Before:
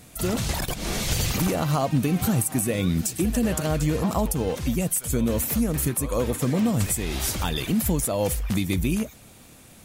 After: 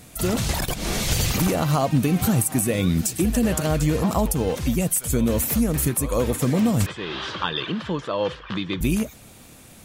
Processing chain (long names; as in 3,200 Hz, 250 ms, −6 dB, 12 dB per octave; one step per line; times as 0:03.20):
0:06.86–0:08.81: loudspeaker in its box 200–3,900 Hz, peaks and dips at 240 Hz −10 dB, 720 Hz −8 dB, 1,100 Hz +8 dB, 1,600 Hz +6 dB, 2,200 Hz −6 dB, 3,200 Hz +5 dB
level +2.5 dB